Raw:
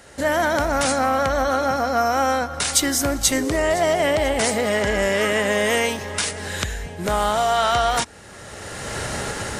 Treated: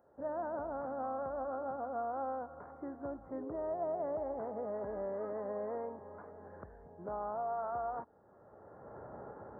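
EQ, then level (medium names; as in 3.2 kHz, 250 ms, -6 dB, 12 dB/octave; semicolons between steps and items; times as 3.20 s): Gaussian low-pass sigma 11 samples; differentiator; bass shelf 120 Hz +5.5 dB; +8.5 dB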